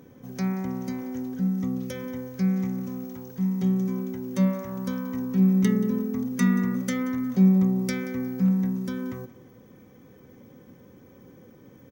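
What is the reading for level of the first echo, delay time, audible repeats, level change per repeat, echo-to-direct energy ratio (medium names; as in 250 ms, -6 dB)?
-18.0 dB, 180 ms, 2, -11.0 dB, -17.5 dB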